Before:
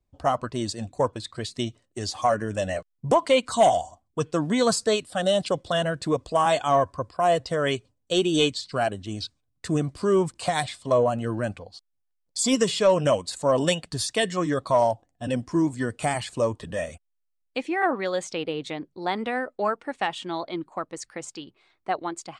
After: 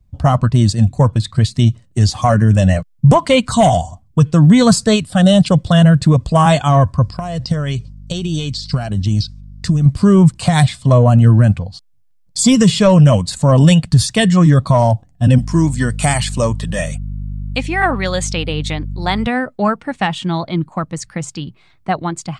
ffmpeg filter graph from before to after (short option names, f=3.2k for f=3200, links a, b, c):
-filter_complex "[0:a]asettb=1/sr,asplit=3[a][b][c];[a]atrim=end=7.024[d];[b]atrim=start=7.02:end=9.86,asetpts=PTS-STARTPTS,afade=t=in:d=0.004:c=qsin,afade=t=out:st=2.836:d=0.004:c=qsin,equalizer=f=5.1k:t=o:w=0.65:g=10,acompressor=threshold=-30dB:ratio=12:attack=3.2:release=140:knee=1:detection=peak,aeval=exprs='val(0)+0.00141*(sin(2*PI*50*n/s)+sin(2*PI*2*50*n/s)/2+sin(2*PI*3*50*n/s)/3+sin(2*PI*4*50*n/s)/4+sin(2*PI*5*50*n/s)/5)':c=same[e];[c]atrim=start=9.856[f];[d][e]acrossfade=d=0.004:c1=hsin:c2=qsin[g];[g][f]acrossfade=d=0.004:c1=qsin:c2=hsin,asettb=1/sr,asplit=3[h][i][j];[h]atrim=end=15.384[k];[i]atrim=start=15.38:end=19.27,asetpts=PTS-STARTPTS,afade=t=in:d=0.004:c=qsin,afade=t=out:st=3.886:d=0.004:c=qsin,highpass=f=360:p=1,aeval=exprs='val(0)+0.00501*(sin(2*PI*50*n/s)+sin(2*PI*2*50*n/s)/2+sin(2*PI*3*50*n/s)/3+sin(2*PI*4*50*n/s)/4+sin(2*PI*5*50*n/s)/5)':c=same,highshelf=f=3.1k:g=7[l];[j]atrim=start=19.266[m];[k][l]acrossfade=d=0.004:c1=hsin:c2=qsin[n];[n][m]acrossfade=d=0.004:c1=qsin:c2=hsin,lowshelf=f=240:t=q:w=1.5:g=13.5,alimiter=level_in=10dB:limit=-1dB:release=50:level=0:latency=1,volume=-1dB"